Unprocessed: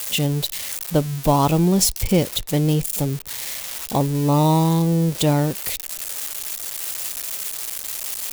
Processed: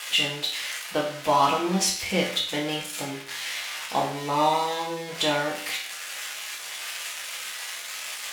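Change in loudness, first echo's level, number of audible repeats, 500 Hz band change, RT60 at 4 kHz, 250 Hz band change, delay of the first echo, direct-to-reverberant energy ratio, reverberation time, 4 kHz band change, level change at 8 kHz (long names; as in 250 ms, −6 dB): −5.5 dB, no echo audible, no echo audible, −4.5 dB, 0.50 s, −11.5 dB, no echo audible, −3.0 dB, 0.55 s, +1.5 dB, −6.0 dB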